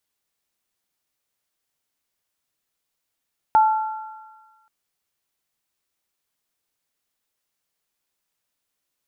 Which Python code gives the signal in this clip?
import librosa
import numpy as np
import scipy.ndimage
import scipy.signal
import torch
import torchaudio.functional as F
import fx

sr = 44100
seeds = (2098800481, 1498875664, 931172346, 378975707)

y = fx.additive_free(sr, length_s=1.13, hz=871.0, level_db=-10.0, upper_db=(-14.5,), decay_s=1.26, upper_decays_s=(1.83,), upper_hz=(1370.0,))